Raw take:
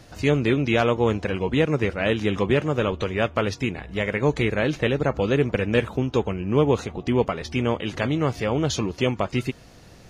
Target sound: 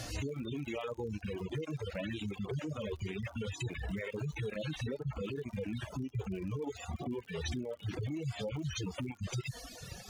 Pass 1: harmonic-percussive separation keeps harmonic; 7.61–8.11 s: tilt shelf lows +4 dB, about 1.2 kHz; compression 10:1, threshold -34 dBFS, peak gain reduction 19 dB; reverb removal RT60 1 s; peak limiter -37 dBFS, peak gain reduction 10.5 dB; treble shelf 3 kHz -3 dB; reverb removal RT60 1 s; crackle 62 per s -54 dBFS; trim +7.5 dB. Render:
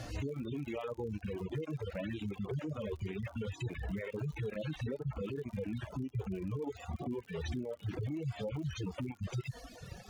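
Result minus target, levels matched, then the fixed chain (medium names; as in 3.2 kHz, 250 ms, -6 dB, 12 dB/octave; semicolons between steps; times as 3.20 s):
8 kHz band -8.5 dB
harmonic-percussive separation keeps harmonic; 7.61–8.11 s: tilt shelf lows +4 dB, about 1.2 kHz; compression 10:1, threshold -34 dBFS, peak gain reduction 19 dB; reverb removal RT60 1 s; peak limiter -37 dBFS, peak gain reduction 10.5 dB; treble shelf 3 kHz +8 dB; reverb removal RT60 1 s; crackle 62 per s -54 dBFS; trim +7.5 dB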